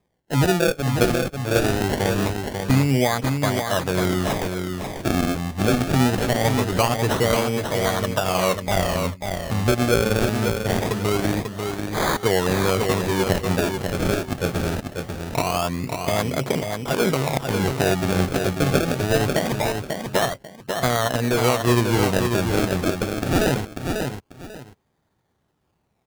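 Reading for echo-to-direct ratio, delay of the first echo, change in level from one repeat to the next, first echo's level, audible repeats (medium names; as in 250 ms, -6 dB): -5.5 dB, 542 ms, -13.0 dB, -5.5 dB, 2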